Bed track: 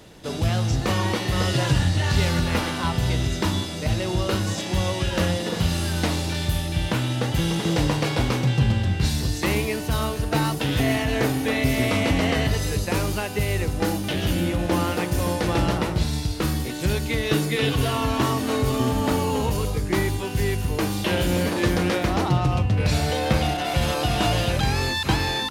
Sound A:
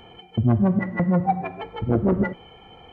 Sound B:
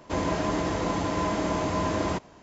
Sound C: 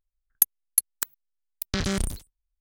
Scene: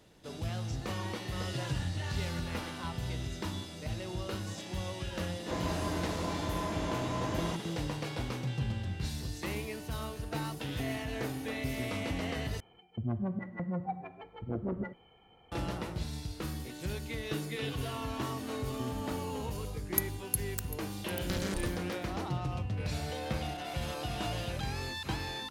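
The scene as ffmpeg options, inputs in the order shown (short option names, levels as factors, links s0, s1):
-filter_complex "[0:a]volume=0.2[s0];[3:a]aecho=1:1:747:0.15[s1];[s0]asplit=2[s2][s3];[s2]atrim=end=12.604[s4];[1:a]atrim=end=2.92,asetpts=PTS-STARTPTS,volume=0.178[s5];[s3]atrim=start=15.516[s6];[2:a]atrim=end=2.42,asetpts=PTS-STARTPTS,volume=0.376,afade=t=in:d=0.004:c=hsin,afade=t=out:st=2.416:d=0.004:c=hsin,adelay=5380[s7];[s1]atrim=end=2.6,asetpts=PTS-STARTPTS,volume=0.316,afade=t=in:d=0.004:c=hsin,afade=t=out:st=2.596:d=0.004:c=hsin,adelay=862596S[s8];[s4][s5]acrossfade=d=0.004:c1=hsin:c2=hsin[s9];[s9][s6]acrossfade=d=0.004:c1=hsin:c2=hsin[s10];[s10][s7][s8]amix=inputs=3:normalize=0"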